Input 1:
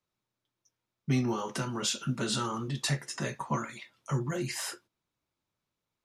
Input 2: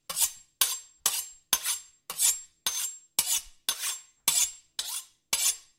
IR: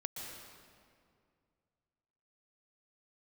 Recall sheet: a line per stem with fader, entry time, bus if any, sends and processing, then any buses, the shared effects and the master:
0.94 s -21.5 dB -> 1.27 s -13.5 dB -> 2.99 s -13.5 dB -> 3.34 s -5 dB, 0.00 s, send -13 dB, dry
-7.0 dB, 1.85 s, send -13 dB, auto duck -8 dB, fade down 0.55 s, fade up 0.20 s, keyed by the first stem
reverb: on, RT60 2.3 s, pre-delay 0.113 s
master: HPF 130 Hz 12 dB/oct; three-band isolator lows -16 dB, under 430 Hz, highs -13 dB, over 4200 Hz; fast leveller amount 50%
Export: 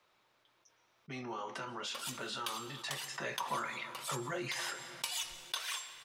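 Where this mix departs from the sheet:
stem 2: send -13 dB -> -21 dB; master: missing HPF 130 Hz 12 dB/oct

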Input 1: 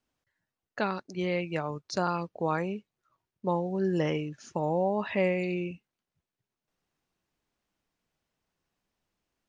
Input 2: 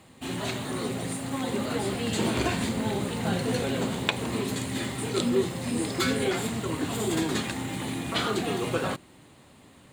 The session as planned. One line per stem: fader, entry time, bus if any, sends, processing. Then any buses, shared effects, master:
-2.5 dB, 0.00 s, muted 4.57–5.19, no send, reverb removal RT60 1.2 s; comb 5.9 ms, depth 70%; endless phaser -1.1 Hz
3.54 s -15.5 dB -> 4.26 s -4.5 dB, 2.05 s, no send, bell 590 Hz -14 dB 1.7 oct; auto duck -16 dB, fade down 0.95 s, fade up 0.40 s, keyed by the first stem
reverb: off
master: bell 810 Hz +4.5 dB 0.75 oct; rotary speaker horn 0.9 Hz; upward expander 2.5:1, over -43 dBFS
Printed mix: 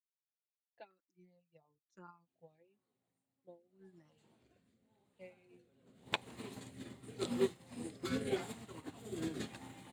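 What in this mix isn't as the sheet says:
stem 1 -2.5 dB -> -10.0 dB; stem 2: missing bell 590 Hz -14 dB 1.7 oct

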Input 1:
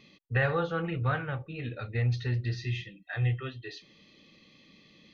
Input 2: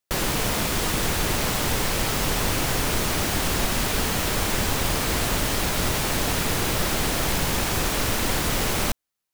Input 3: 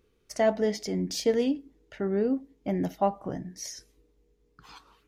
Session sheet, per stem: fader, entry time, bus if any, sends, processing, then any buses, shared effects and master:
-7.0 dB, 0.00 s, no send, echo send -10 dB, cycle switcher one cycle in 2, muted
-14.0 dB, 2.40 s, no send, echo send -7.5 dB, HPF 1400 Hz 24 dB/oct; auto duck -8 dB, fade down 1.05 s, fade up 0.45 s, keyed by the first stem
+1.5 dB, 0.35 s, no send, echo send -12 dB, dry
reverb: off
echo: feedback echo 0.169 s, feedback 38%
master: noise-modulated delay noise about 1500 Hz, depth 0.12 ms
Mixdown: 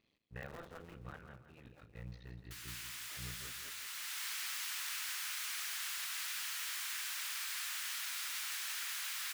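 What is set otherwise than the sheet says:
stem 1 -7.0 dB -> -18.0 dB; stem 3: muted; master: missing noise-modulated delay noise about 1500 Hz, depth 0.12 ms

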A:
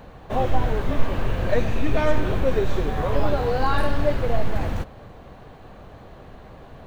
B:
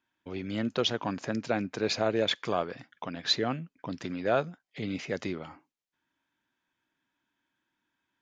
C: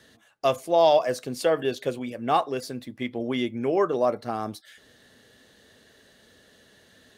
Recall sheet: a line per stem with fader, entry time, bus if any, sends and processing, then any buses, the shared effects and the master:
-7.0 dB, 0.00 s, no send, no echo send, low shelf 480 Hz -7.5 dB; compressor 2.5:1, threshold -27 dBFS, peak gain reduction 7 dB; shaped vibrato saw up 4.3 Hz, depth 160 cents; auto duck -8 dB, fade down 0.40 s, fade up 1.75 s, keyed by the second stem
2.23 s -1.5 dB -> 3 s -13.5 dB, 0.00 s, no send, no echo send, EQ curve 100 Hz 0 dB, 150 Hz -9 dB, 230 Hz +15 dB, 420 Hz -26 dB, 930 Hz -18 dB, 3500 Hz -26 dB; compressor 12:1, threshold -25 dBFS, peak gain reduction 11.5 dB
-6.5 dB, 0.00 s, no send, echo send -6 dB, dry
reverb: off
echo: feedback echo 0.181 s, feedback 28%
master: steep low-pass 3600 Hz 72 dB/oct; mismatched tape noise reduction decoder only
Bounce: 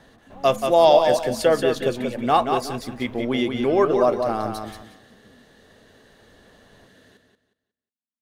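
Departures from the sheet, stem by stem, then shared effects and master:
stem B -1.5 dB -> -11.5 dB; stem C -6.5 dB -> +4.0 dB; master: missing steep low-pass 3600 Hz 72 dB/oct

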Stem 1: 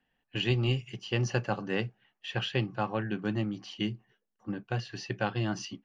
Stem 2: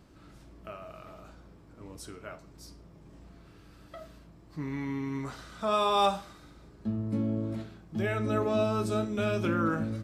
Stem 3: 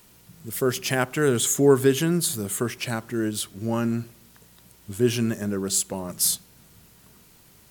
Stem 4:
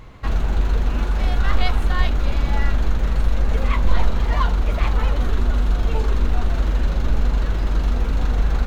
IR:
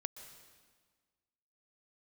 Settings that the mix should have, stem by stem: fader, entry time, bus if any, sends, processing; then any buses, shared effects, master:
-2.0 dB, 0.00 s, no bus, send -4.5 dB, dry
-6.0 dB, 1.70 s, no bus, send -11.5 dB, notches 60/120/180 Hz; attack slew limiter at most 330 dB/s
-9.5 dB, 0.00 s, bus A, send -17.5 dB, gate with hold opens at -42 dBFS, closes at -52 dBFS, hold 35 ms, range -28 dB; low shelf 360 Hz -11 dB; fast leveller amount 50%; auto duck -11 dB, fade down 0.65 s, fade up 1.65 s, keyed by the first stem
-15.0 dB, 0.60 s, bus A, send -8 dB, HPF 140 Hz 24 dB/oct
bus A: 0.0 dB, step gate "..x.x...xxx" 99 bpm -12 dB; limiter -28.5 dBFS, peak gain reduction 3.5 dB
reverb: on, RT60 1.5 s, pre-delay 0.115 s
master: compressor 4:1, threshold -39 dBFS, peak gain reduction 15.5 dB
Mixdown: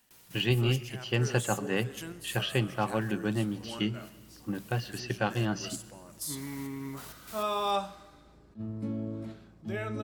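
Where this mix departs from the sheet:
stem 4: muted; master: missing compressor 4:1, threshold -39 dBFS, peak gain reduction 15.5 dB

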